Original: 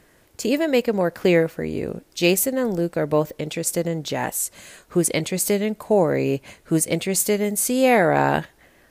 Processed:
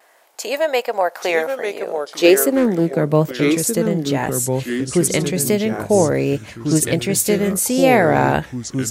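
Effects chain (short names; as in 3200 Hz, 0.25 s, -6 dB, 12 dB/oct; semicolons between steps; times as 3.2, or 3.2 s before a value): vibrato 1.3 Hz 42 cents; high-pass sweep 740 Hz -> 65 Hz, 1.77–3.85; echoes that change speed 0.759 s, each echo -3 st, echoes 2, each echo -6 dB; 2.53–2.96 Doppler distortion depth 0.14 ms; gain +2.5 dB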